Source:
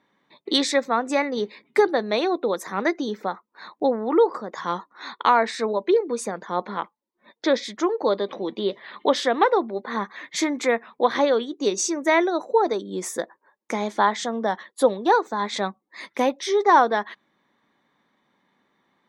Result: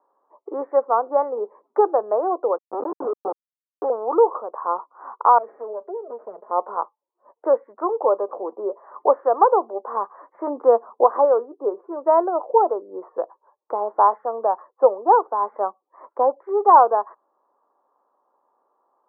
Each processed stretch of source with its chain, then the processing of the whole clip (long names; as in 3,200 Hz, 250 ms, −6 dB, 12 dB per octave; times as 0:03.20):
0:02.58–0:03.90: comb filter 2.4 ms, depth 85% + comparator with hysteresis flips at −23.5 dBFS + tilt shelving filter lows +8.5 dB, about 630 Hz
0:05.38–0:06.51: lower of the sound and its delayed copy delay 4.8 ms + downward compressor 4 to 1, threshold −28 dBFS + flat-topped bell 1,100 Hz −9 dB 1.3 octaves
0:10.47–0:11.04: low-pass filter 1,700 Hz 24 dB per octave + low-shelf EQ 390 Hz +11.5 dB
whole clip: Butterworth low-pass 1,200 Hz 48 dB per octave; de-essing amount 80%; high-pass filter 460 Hz 24 dB per octave; level +5 dB